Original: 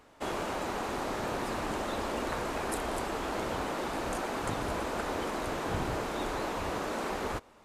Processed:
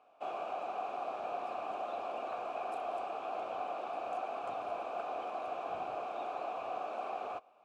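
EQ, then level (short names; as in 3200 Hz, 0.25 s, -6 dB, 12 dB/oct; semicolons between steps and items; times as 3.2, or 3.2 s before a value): vowel filter a; HPF 50 Hz; notch 1100 Hz, Q 17; +4.5 dB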